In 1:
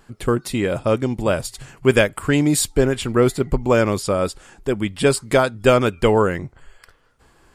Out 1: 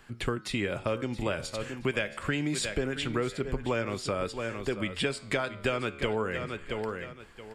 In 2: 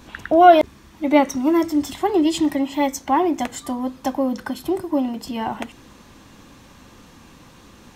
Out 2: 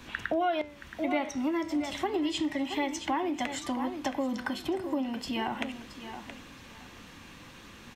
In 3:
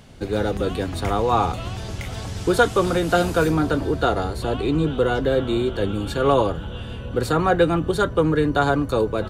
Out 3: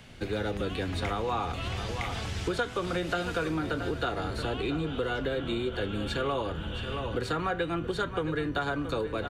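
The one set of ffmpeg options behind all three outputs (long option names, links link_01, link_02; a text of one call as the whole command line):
ffmpeg -i in.wav -filter_complex "[0:a]acrossover=split=8700[link_01][link_02];[link_02]acompressor=threshold=-53dB:ratio=4:attack=1:release=60[link_03];[link_01][link_03]amix=inputs=2:normalize=0,flanger=delay=8:depth=6.3:regen=85:speed=0.25:shape=triangular,acrossover=split=280|1200|2800[link_04][link_05][link_06][link_07];[link_06]crystalizer=i=9:c=0[link_08];[link_04][link_05][link_08][link_07]amix=inputs=4:normalize=0,aecho=1:1:673|1346:0.211|0.0444,acompressor=threshold=-28dB:ratio=4" out.wav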